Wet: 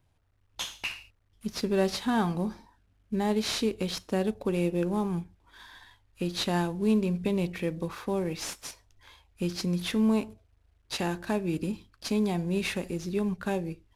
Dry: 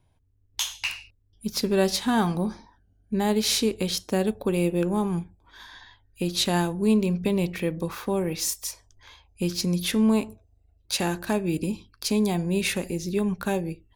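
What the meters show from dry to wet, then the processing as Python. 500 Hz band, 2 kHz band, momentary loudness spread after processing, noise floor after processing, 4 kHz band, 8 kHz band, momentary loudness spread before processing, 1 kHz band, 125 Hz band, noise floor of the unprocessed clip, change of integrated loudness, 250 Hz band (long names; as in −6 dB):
−3.5 dB, −4.0 dB, 11 LU, −68 dBFS, −6.5 dB, −9.5 dB, 9 LU, −3.5 dB, −3.5 dB, −64 dBFS, −4.0 dB, −3.5 dB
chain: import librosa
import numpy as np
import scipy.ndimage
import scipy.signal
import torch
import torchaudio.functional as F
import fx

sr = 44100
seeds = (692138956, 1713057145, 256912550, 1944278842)

y = fx.cvsd(x, sr, bps=64000)
y = fx.peak_eq(y, sr, hz=8500.0, db=-5.5, octaves=1.5)
y = F.gain(torch.from_numpy(y), -3.5).numpy()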